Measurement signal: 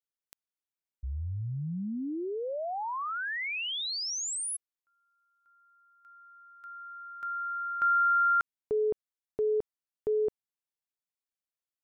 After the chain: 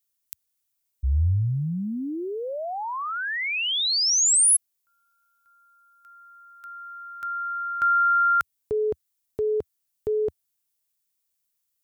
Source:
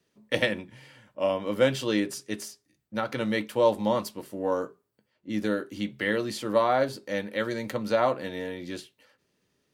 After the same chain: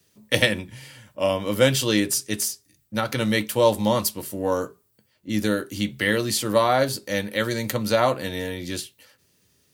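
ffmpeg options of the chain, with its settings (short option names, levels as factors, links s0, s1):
-af "equalizer=f=81:t=o:w=1.6:g=11.5,crystalizer=i=3.5:c=0,volume=1.33"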